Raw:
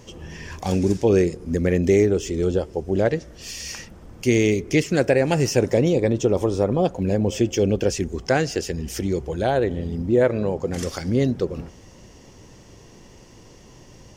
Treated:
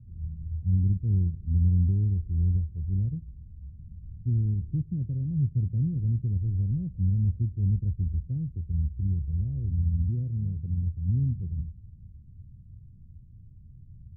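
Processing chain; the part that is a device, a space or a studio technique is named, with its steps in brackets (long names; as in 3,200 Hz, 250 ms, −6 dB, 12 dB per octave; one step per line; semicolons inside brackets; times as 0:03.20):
the neighbour's flat through the wall (low-pass filter 150 Hz 24 dB per octave; parametric band 81 Hz +7.5 dB 0.55 octaves)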